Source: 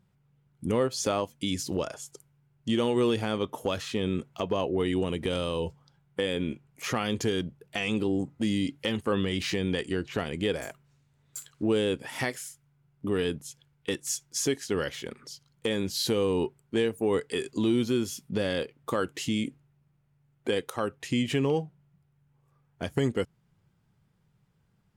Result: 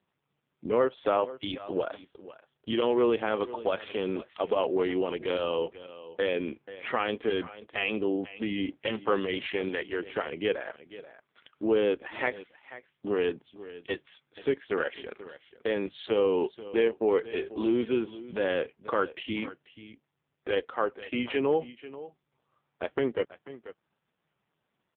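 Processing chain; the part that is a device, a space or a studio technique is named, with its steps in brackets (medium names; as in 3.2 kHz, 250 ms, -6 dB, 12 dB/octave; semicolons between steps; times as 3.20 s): 9.68–10.25 s: high-pass 250 Hz 6 dB/octave; satellite phone (band-pass 380–3300 Hz; delay 488 ms -16 dB; trim +4.5 dB; AMR-NB 4.75 kbps 8 kHz)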